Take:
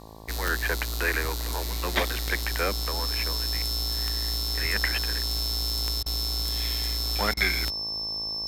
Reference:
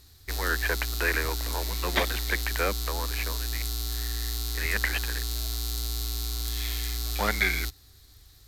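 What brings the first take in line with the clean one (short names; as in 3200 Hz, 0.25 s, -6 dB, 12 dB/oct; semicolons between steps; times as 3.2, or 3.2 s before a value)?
de-click; de-hum 54.4 Hz, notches 21; notch 5300 Hz, Q 30; interpolate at 6.03/7.34, 29 ms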